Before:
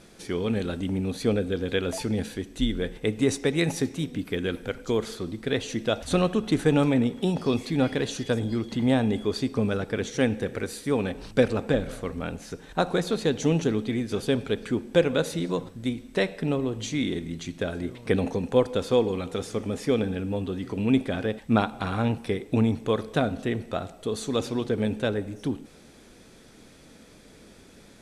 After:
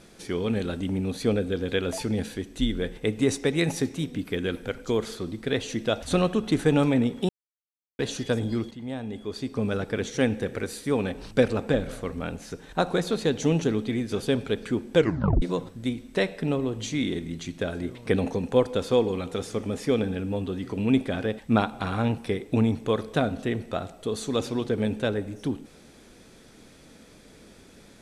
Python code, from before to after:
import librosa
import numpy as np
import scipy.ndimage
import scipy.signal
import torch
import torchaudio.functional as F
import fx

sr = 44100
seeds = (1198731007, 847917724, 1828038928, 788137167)

y = fx.edit(x, sr, fx.silence(start_s=7.29, length_s=0.7),
    fx.fade_in_from(start_s=8.71, length_s=1.07, curve='qua', floor_db=-13.0),
    fx.tape_stop(start_s=14.97, length_s=0.45), tone=tone)